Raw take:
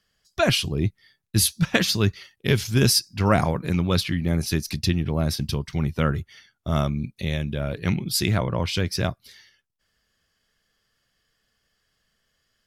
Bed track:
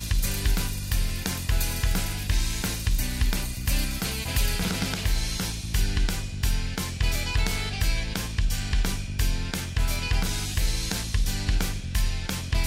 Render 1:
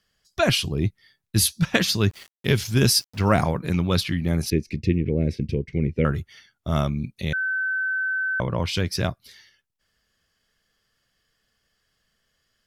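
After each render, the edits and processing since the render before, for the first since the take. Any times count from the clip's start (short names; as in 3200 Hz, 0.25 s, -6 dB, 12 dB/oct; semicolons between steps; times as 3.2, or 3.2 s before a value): 2.1–3.42 sample gate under -42.5 dBFS; 4.5–6.05 EQ curve 150 Hz 0 dB, 480 Hz +7 dB, 690 Hz -12 dB, 1200 Hz -27 dB, 2200 Hz +2 dB, 3400 Hz -15 dB, 7400 Hz -17 dB, 13000 Hz -29 dB; 7.33–8.4 bleep 1530 Hz -22 dBFS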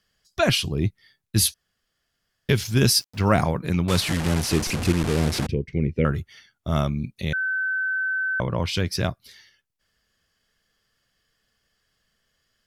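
1.54–2.49 room tone; 3.88–5.47 delta modulation 64 kbps, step -21 dBFS; 7.46–7.97 LPF 9700 Hz 24 dB/oct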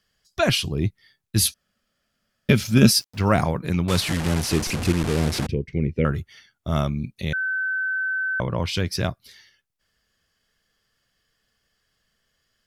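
1.45–2.91 small resonant body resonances 220/570/1300/2400 Hz, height 11 dB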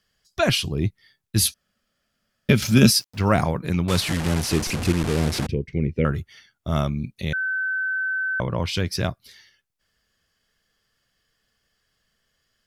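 2.62–3.04 three-band squash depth 40%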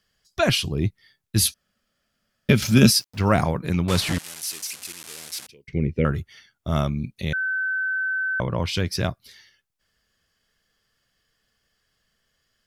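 4.18–5.68 differentiator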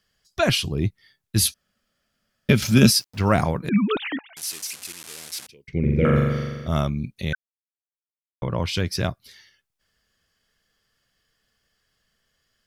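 3.69–4.37 sine-wave speech; 5.79–6.68 flutter echo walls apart 7.2 m, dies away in 1.5 s; 7.35–8.42 mute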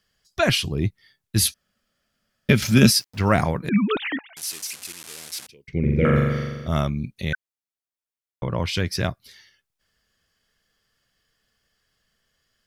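dynamic EQ 1900 Hz, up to +4 dB, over -43 dBFS, Q 2.7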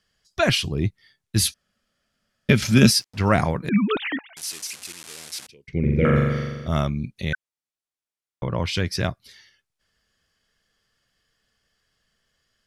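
LPF 11000 Hz 12 dB/oct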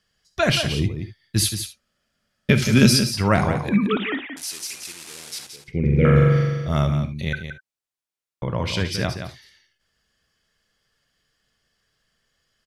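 echo 0.174 s -8.5 dB; non-linear reverb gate 90 ms rising, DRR 10.5 dB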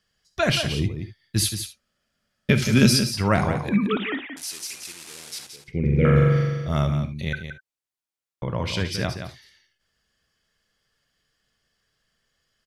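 gain -2 dB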